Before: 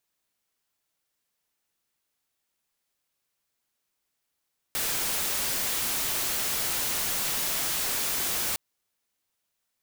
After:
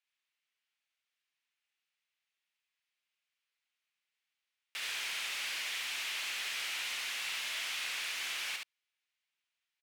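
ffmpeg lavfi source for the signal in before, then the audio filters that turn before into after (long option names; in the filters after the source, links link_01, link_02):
-f lavfi -i "anoisesrc=color=white:amplitude=0.0651:duration=3.81:sample_rate=44100:seed=1"
-filter_complex "[0:a]bandpass=frequency=2500:width_type=q:width=1.8:csg=0,asoftclip=type=tanh:threshold=-28dB,asplit=2[link_01][link_02];[link_02]aecho=0:1:71:0.668[link_03];[link_01][link_03]amix=inputs=2:normalize=0"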